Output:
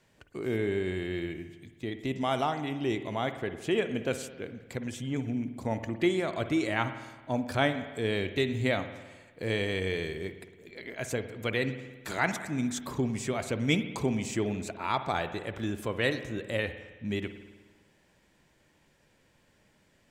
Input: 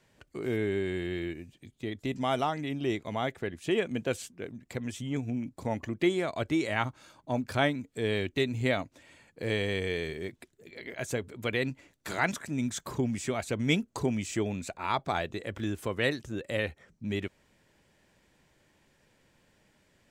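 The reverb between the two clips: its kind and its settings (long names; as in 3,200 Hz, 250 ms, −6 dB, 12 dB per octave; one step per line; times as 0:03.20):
spring reverb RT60 1.3 s, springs 53 ms, chirp 75 ms, DRR 9.5 dB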